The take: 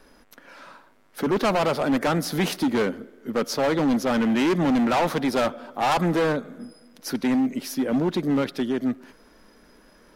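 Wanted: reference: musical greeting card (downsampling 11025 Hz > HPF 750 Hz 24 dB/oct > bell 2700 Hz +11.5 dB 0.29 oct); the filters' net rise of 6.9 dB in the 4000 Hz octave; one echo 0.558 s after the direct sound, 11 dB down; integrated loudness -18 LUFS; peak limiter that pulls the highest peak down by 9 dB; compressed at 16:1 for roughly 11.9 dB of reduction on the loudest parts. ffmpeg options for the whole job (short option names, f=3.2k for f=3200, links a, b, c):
-af "equalizer=f=4k:t=o:g=5,acompressor=threshold=-31dB:ratio=16,alimiter=level_in=6dB:limit=-24dB:level=0:latency=1,volume=-6dB,aecho=1:1:558:0.282,aresample=11025,aresample=44100,highpass=f=750:w=0.5412,highpass=f=750:w=1.3066,equalizer=f=2.7k:t=o:w=0.29:g=11.5,volume=23dB"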